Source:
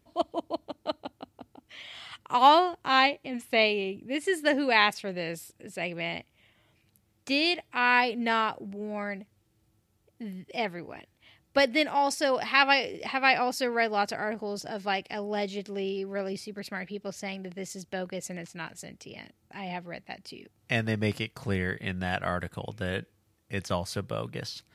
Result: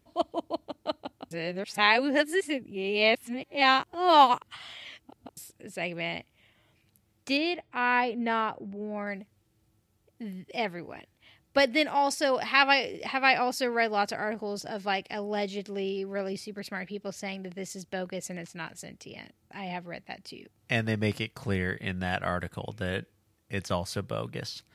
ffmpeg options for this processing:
-filter_complex "[0:a]asettb=1/sr,asplit=3[a][b][c];[a]atrim=end=7.374[d];[b]atrim=start=7.37:end=9.07,asetpts=PTS-STARTPTS,afade=t=in:d=0.004:c=qsin,afade=t=out:st=1.696:d=0.004:c=qsin,lowpass=f=1.6k:p=1[e];[c]atrim=start=9.066[f];[d][e]acrossfade=d=0.004:c1=hsin:c2=qsin[g];[g][f]acrossfade=d=0.004:c1=qsin:c2=hsin,asplit=3[h][i][j];[h]atrim=end=1.312[k];[i]atrim=start=1.308:end=5.372,asetpts=PTS-STARTPTS,areverse[l];[j]atrim=start=5.368[m];[k][l]acrossfade=d=0.004:c1=hsin:c2=hsin[n];[n][m]acrossfade=d=0.004:c1=hsin:c2=hsin"

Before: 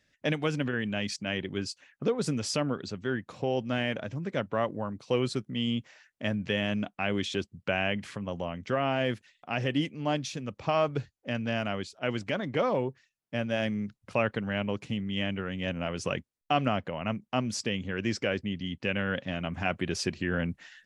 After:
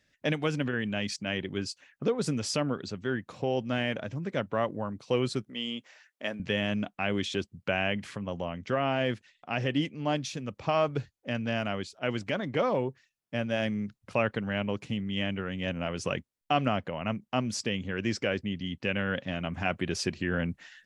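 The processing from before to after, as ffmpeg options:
-filter_complex "[0:a]asettb=1/sr,asplit=3[a][b][c];[a]atrim=end=5.494[d];[b]atrim=start=5.49:end=6.4,asetpts=PTS-STARTPTS,afade=t=in:d=0.004:c=qsin,afade=t=out:st=0.906:d=0.004:c=qsin,highpass=350[e];[c]atrim=start=6.396[f];[d][e]acrossfade=d=0.004:c1=hsin:c2=qsin[g];[g][f]acrossfade=d=0.004:c1=qsin:c2=hsin,asettb=1/sr,asplit=3[h][i][j];[h]atrim=end=8.214[k];[i]atrim=start=8.21:end=10.13,asetpts=PTS-STARTPTS,afade=t=in:d=0.004:c=qsin,afade=t=out:st=1.916:d=0.004:c=qsin,lowpass=8.4k[l];[j]atrim=start=10.126[m];[k][l]acrossfade=d=0.004:c1=hsin:c2=qsin[n];[n][m]acrossfade=d=0.004:c1=qsin:c2=hsin"

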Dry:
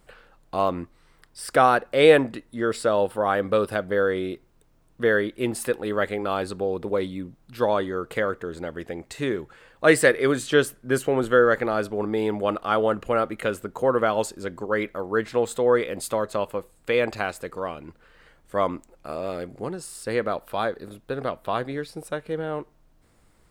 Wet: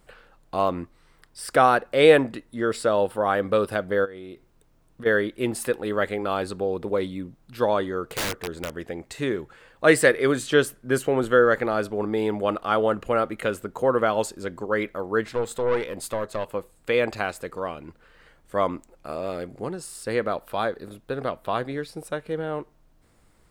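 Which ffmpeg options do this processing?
-filter_complex "[0:a]asplit=3[a][b][c];[a]afade=t=out:st=4.04:d=0.02[d];[b]acompressor=threshold=-35dB:ratio=12:attack=3.2:release=140:knee=1:detection=peak,afade=t=in:st=4.04:d=0.02,afade=t=out:st=5.05:d=0.02[e];[c]afade=t=in:st=5.05:d=0.02[f];[d][e][f]amix=inputs=3:normalize=0,asplit=3[g][h][i];[g]afade=t=out:st=8.05:d=0.02[j];[h]aeval=exprs='(mod(12.6*val(0)+1,2)-1)/12.6':c=same,afade=t=in:st=8.05:d=0.02,afade=t=out:st=8.69:d=0.02[k];[i]afade=t=in:st=8.69:d=0.02[l];[j][k][l]amix=inputs=3:normalize=0,asettb=1/sr,asplit=3[m][n][o];[m]atrim=end=15.324[p];[n]atrim=start=15.32:end=16.52,asetpts=PTS-STARTPTS,afade=t=in:d=0.004:c=qsin,afade=t=out:st=1.196:d=0.004:c=qsin,aeval=exprs='(tanh(7.08*val(0)+0.5)-tanh(0.5))/7.08':c=same[q];[o]atrim=start=16.516[r];[p][q]acrossfade=d=0.004:c1=hsin:c2=qsin[s];[s][r]acrossfade=d=0.004:c1=qsin:c2=hsin"

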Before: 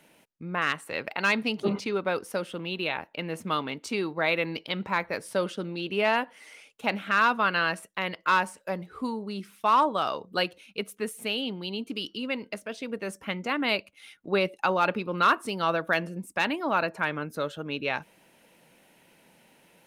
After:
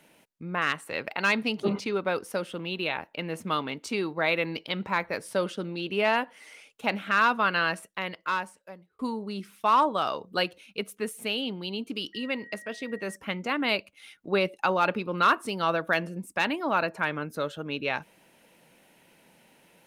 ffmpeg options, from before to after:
-filter_complex "[0:a]asettb=1/sr,asplit=3[a][b][c];[a]atrim=end=12.134[d];[b]atrim=start=12.13:end=13.16,asetpts=PTS-STARTPTS,afade=t=in:d=0.004:c=qsin,afade=t=out:st=1.026:d=0.004:c=qsin,aeval=exprs='val(0)+0.00562*sin(2*PI*1900*n/s)':c=same[e];[c]atrim=start=13.156[f];[d][e]acrossfade=d=0.004:c1=hsin:c2=qsin[g];[g][f]acrossfade=d=0.004:c1=qsin:c2=hsin,asplit=2[h][i];[h]atrim=end=8.99,asetpts=PTS-STARTPTS,afade=t=out:st=7.74:d=1.25[j];[i]atrim=start=8.99,asetpts=PTS-STARTPTS,afade=t=in:d=0.004:c=hsin[k];[j][k]concat=n=2:v=0:a=1"

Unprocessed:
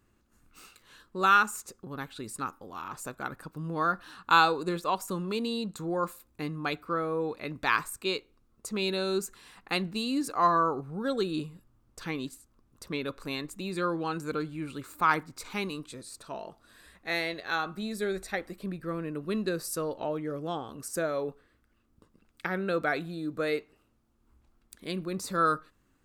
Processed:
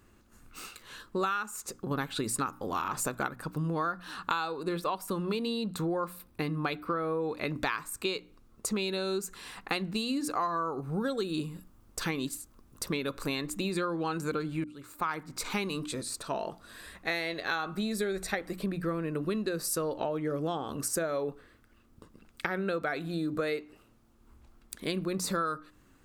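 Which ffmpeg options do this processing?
-filter_complex "[0:a]asettb=1/sr,asplit=3[a][b][c];[a]atrim=end=4.474[d];[b]atrim=start=4.47:end=7.23,asetpts=PTS-STARTPTS,afade=t=in:d=0.004:c=qsin,afade=t=out:st=2.756:d=0.004:c=qsin,equalizer=f=7k:w=3.1:g=-8.5[e];[c]atrim=start=7.226[f];[d][e]acrossfade=d=0.004:c1=hsin:c2=qsin[g];[g][f]acrossfade=d=0.004:c1=qsin:c2=hsin,asettb=1/sr,asplit=3[h][i][j];[h]atrim=end=10.374[k];[i]atrim=start=10.37:end=13.27,asetpts=PTS-STARTPTS,afade=t=in:d=0.004:c=qsin,afade=t=out:st=2.896:d=0.004:c=qsin,highshelf=f=7.1k:g=6.5[l];[j]atrim=start=13.266[m];[k][l]acrossfade=d=0.004:c1=hsin:c2=qsin[n];[n][m]acrossfade=d=0.004:c1=qsin:c2=hsin,asplit=4[o][p][q][r];[o]atrim=end=1.912[s];[p]atrim=start=1.908:end=3.292,asetpts=PTS-STARTPTS,volume=4.5dB[t];[q]atrim=start=3.288:end=14.64,asetpts=PTS-STARTPTS,afade=t=out:st=11.348:d=0.004:c=hsin[u];[r]atrim=start=14.64,asetpts=PTS-STARTPTS,afade=t=in:d=0.88[v];[s][t]acrossfade=d=0.004:c1=hsin:c2=hsin[w];[u][v]concat=n=2:v=0:a=1[x];[w][x]acrossfade=d=0.004:c1=hsin:c2=hsin,bandreject=f=60:t=h:w=6,bandreject=f=120:t=h:w=6,bandreject=f=180:t=h:w=6,bandreject=f=240:t=h:w=6,bandreject=f=300:t=h:w=6,acompressor=threshold=-36dB:ratio=12,volume=8dB"

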